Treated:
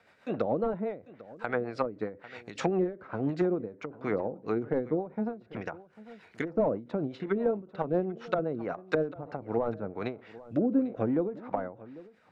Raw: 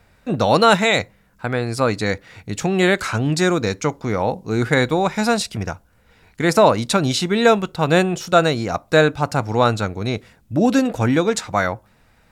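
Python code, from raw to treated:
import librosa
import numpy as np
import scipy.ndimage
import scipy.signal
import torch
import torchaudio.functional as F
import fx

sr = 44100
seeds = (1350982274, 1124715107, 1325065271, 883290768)

y = fx.weighting(x, sr, curve='A')
y = fx.rotary_switch(y, sr, hz=7.5, then_hz=0.6, switch_at_s=8.75)
y = fx.high_shelf(y, sr, hz=4300.0, db=-11.5)
y = fx.rider(y, sr, range_db=3, speed_s=2.0)
y = np.clip(y, -10.0 ** (-13.0 / 20.0), 10.0 ** (-13.0 / 20.0))
y = fx.env_lowpass_down(y, sr, base_hz=390.0, full_db=-22.0)
y = y + 10.0 ** (-19.0 / 20.0) * np.pad(y, (int(796 * sr / 1000.0), 0))[:len(y)]
y = fx.end_taper(y, sr, db_per_s=170.0)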